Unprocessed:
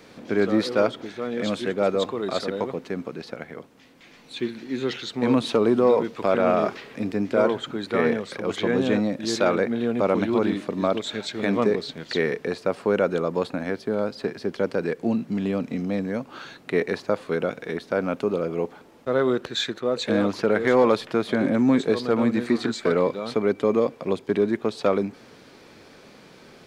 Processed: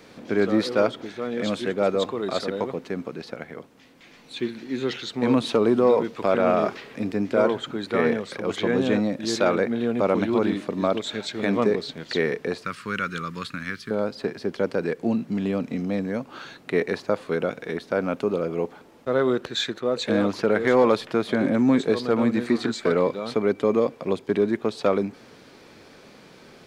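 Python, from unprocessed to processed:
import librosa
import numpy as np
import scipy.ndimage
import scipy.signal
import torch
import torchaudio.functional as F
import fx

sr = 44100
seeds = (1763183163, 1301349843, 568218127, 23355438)

y = fx.curve_eq(x, sr, hz=(150.0, 780.0, 1200.0), db=(0, -23, 4), at=(12.64, 13.91))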